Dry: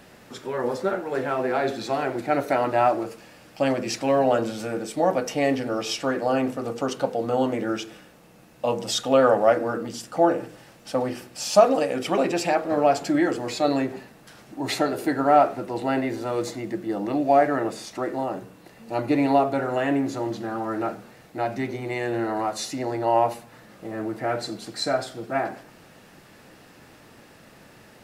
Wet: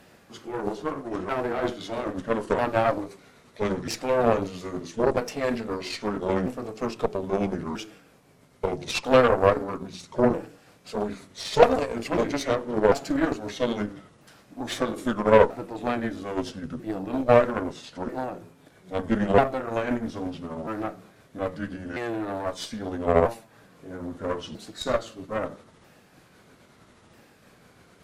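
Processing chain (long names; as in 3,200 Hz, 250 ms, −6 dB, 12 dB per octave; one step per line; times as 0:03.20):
pitch shifter swept by a sawtooth −6 semitones, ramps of 1,292 ms
harmonic generator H 6 −19 dB, 7 −23 dB, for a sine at −4.5 dBFS
level +2 dB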